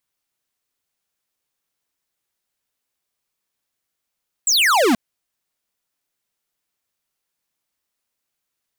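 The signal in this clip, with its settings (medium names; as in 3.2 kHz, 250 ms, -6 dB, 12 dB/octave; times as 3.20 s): laser zap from 8.1 kHz, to 210 Hz, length 0.48 s square, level -15 dB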